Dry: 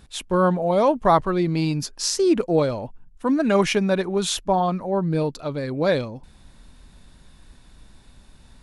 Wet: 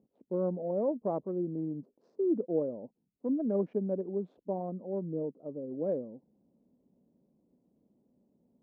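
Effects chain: Wiener smoothing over 25 samples; Chebyshev band-pass 210–540 Hz, order 2; gain -9 dB

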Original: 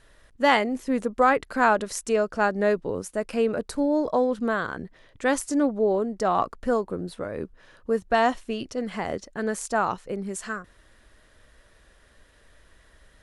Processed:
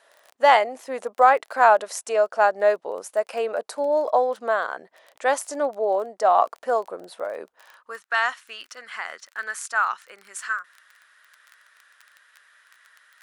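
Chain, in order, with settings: crackle 18/s -34 dBFS; high-pass sweep 670 Hz -> 1400 Hz, 7.5–8.01

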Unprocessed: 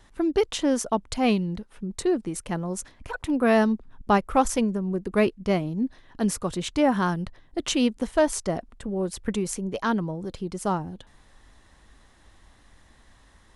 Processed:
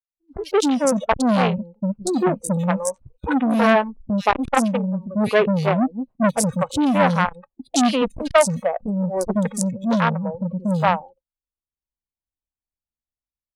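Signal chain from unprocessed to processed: Wiener smoothing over 25 samples; 1.69–3.72 doubler 15 ms -11 dB; three bands offset in time lows, highs, mids 80/170 ms, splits 330/3100 Hz; spectral noise reduction 25 dB; expander -44 dBFS; AGC gain up to 16 dB; core saturation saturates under 1200 Hz

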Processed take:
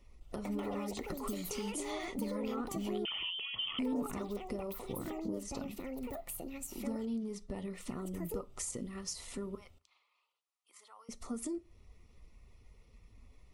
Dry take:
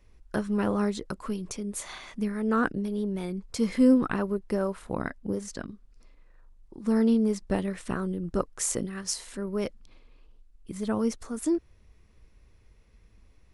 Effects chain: bin magnitudes rounded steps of 15 dB; limiter -22 dBFS, peak gain reduction 10.5 dB; compressor 3:1, threshold -38 dBFS, peak gain reduction 10 dB; 9.55–11.09 ladder high-pass 800 Hz, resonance 30%; echoes that change speed 0.21 s, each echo +6 st, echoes 2; reverb RT60 0.35 s, pre-delay 4 ms, DRR 13.5 dB; 3.05–3.79 inverted band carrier 3300 Hz; Butterworth band-stop 1600 Hz, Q 4.2; gain -1 dB

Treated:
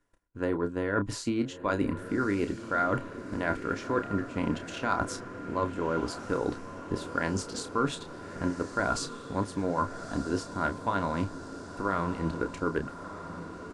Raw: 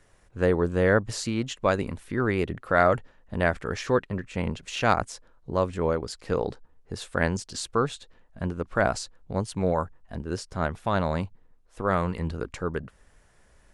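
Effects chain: gate -53 dBFS, range -19 dB; transient shaper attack +8 dB, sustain 0 dB; reverse; compressor 6:1, threshold -30 dBFS, peak gain reduction 18 dB; reverse; doubler 30 ms -9 dB; small resonant body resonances 290/1000/1400 Hz, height 12 dB, ringing for 45 ms; on a send: diffused feedback echo 1.267 s, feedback 62%, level -11.5 dB

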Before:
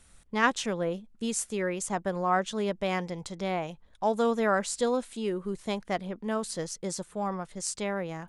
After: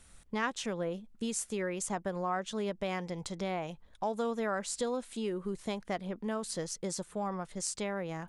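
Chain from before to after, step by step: compressor 2.5:1, threshold -33 dBFS, peak gain reduction 10 dB

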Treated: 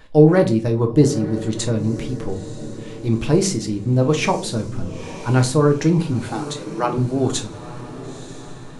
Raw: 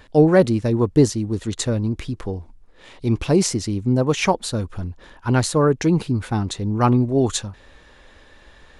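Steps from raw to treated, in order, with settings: 6.29–6.98 steep high-pass 260 Hz 48 dB/oct; diffused feedback echo 0.942 s, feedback 55%, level -14.5 dB; on a send at -4 dB: reverb RT60 0.40 s, pre-delay 6 ms; on the sum: gain -1.5 dB

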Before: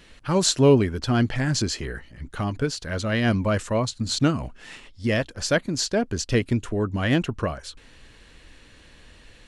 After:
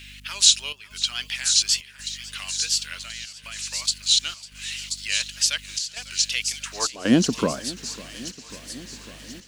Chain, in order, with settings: in parallel at -2 dB: limiter -17 dBFS, peak gain reduction 10 dB; on the sum: wow and flutter 110 cents; bit-crush 10-bit; high-pass sweep 2500 Hz -> 220 Hz, 6.61–7.13; 2.98–3.82 level quantiser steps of 19 dB; high shelf 2700 Hz +7.5 dB; on a send: thin delay 1.032 s, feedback 35%, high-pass 5200 Hz, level -4 dB; on the sum: dynamic EQ 2000 Hz, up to -7 dB, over -34 dBFS, Q 1.5; hum 50 Hz, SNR 22 dB; step gate "xxxx.xxxxx.xxx" 83 bpm -12 dB; warbling echo 0.547 s, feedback 77%, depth 80 cents, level -19.5 dB; gain -3 dB

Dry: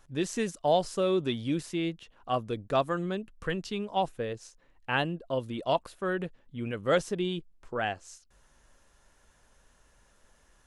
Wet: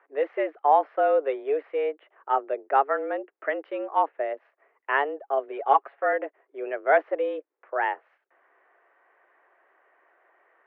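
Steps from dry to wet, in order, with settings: mistuned SSB +140 Hz 240–2100 Hz; 5.48–6.13 comb 7.2 ms, depth 66%; gain +5.5 dB

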